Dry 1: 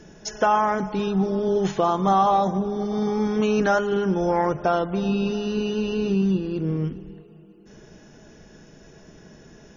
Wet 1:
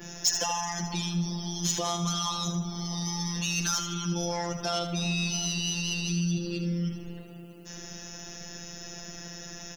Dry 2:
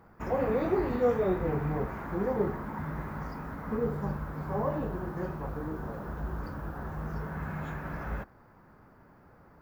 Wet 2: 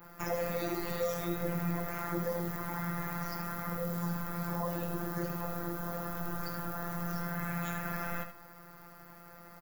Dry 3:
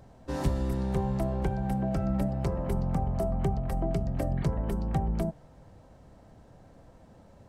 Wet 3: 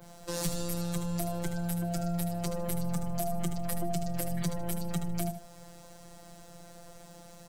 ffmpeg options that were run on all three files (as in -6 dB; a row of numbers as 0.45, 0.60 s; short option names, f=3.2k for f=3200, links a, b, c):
-filter_complex "[0:a]adynamicequalizer=threshold=0.00398:dfrequency=6400:dqfactor=0.89:tfrequency=6400:tqfactor=0.89:attack=5:release=100:ratio=0.375:range=1.5:mode=boostabove:tftype=bell,acrossover=split=160|3000[a][b][c];[b]acompressor=threshold=-33dB:ratio=4[d];[a][d][c]amix=inputs=3:normalize=0,afftfilt=real='hypot(re,im)*cos(PI*b)':imag='0':win_size=1024:overlap=0.75,asplit=2[e][f];[f]acompressor=threshold=-44dB:ratio=6,volume=-2dB[g];[e][g]amix=inputs=2:normalize=0,crystalizer=i=6.5:c=0,asoftclip=type=tanh:threshold=-17.5dB,aecho=1:1:77|154|231:0.355|0.0923|0.024"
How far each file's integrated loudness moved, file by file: -7.0, -3.0, -3.5 LU